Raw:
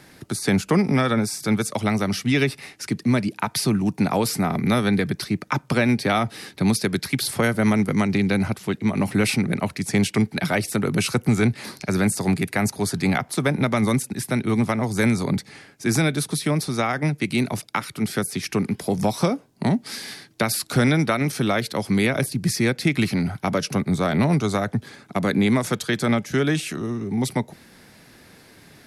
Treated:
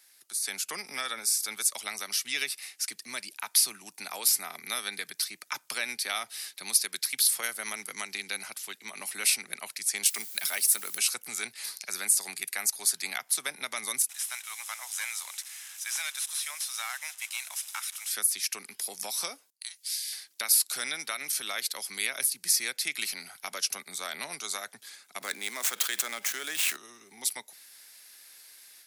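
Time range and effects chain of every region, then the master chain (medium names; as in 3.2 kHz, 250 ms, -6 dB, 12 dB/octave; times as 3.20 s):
10.05–10.98 s: expander -33 dBFS + treble shelf 8 kHz +9 dB + word length cut 8-bit, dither triangular
14.09–18.11 s: one-bit delta coder 64 kbps, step -35.5 dBFS + high-pass 800 Hz 24 dB/octave + band-stop 4.5 kHz, Q 7.6
19.50–20.13 s: gate -50 dBFS, range -30 dB + Bessel high-pass 2.8 kHz, order 4 + three bands compressed up and down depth 40%
25.21–26.77 s: median filter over 9 samples + high-pass 190 Hz + level flattener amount 70%
whole clip: high-pass 490 Hz 6 dB/octave; differentiator; level rider gain up to 8 dB; trim -4 dB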